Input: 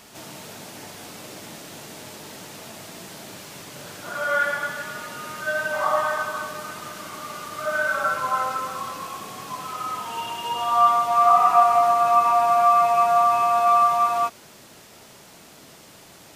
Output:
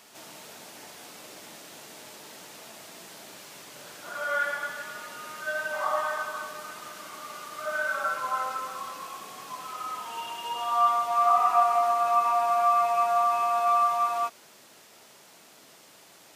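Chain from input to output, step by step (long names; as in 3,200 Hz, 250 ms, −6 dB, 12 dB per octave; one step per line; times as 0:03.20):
high-pass filter 390 Hz 6 dB per octave
level −5 dB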